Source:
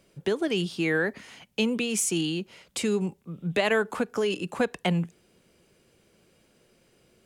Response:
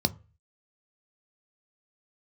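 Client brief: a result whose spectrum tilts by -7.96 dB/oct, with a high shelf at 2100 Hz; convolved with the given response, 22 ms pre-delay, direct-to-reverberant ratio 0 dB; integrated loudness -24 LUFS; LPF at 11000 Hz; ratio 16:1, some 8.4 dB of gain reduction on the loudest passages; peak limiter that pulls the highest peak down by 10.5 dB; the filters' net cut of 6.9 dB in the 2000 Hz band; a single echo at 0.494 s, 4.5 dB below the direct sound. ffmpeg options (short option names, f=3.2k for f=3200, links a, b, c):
-filter_complex "[0:a]lowpass=11k,equalizer=f=2k:t=o:g=-7.5,highshelf=f=2.1k:g=-3,acompressor=threshold=-29dB:ratio=16,alimiter=level_in=5dB:limit=-24dB:level=0:latency=1,volume=-5dB,aecho=1:1:494:0.596,asplit=2[a][b];[1:a]atrim=start_sample=2205,adelay=22[c];[b][c]afir=irnorm=-1:irlink=0,volume=-8dB[d];[a][d]amix=inputs=2:normalize=0,volume=5dB"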